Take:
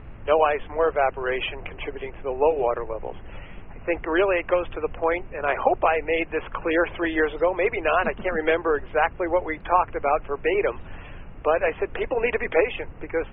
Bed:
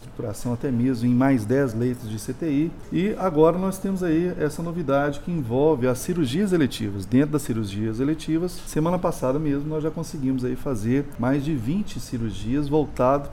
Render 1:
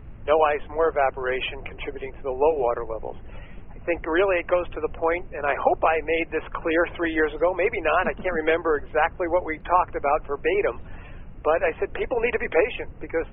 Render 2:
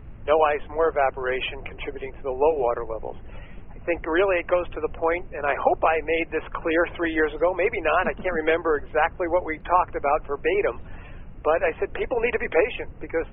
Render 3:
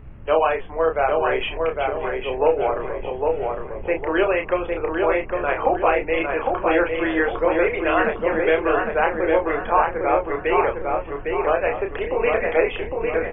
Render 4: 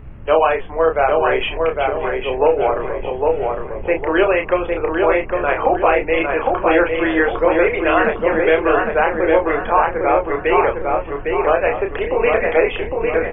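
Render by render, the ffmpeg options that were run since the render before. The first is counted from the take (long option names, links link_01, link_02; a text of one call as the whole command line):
ffmpeg -i in.wav -af "afftdn=noise_reduction=6:noise_floor=-42" out.wav
ffmpeg -i in.wav -af anull out.wav
ffmpeg -i in.wav -filter_complex "[0:a]asplit=2[link_01][link_02];[link_02]adelay=31,volume=-5.5dB[link_03];[link_01][link_03]amix=inputs=2:normalize=0,asplit=2[link_04][link_05];[link_05]adelay=806,lowpass=frequency=2400:poles=1,volume=-3dB,asplit=2[link_06][link_07];[link_07]adelay=806,lowpass=frequency=2400:poles=1,volume=0.45,asplit=2[link_08][link_09];[link_09]adelay=806,lowpass=frequency=2400:poles=1,volume=0.45,asplit=2[link_10][link_11];[link_11]adelay=806,lowpass=frequency=2400:poles=1,volume=0.45,asplit=2[link_12][link_13];[link_13]adelay=806,lowpass=frequency=2400:poles=1,volume=0.45,asplit=2[link_14][link_15];[link_15]adelay=806,lowpass=frequency=2400:poles=1,volume=0.45[link_16];[link_04][link_06][link_08][link_10][link_12][link_14][link_16]amix=inputs=7:normalize=0" out.wav
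ffmpeg -i in.wav -af "volume=4.5dB,alimiter=limit=-3dB:level=0:latency=1" out.wav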